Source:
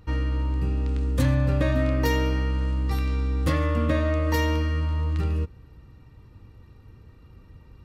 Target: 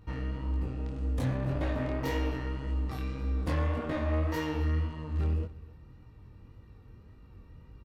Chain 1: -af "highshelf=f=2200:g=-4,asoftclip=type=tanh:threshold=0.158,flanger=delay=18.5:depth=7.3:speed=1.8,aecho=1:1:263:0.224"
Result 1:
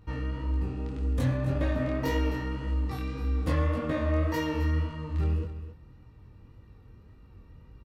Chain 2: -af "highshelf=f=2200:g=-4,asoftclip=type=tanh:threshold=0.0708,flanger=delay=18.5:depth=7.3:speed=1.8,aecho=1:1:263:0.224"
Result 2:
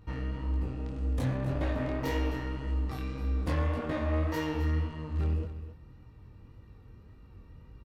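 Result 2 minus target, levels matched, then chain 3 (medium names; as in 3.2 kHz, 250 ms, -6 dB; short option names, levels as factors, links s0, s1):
echo-to-direct +8 dB
-af "highshelf=f=2200:g=-4,asoftclip=type=tanh:threshold=0.0708,flanger=delay=18.5:depth=7.3:speed=1.8,aecho=1:1:263:0.0891"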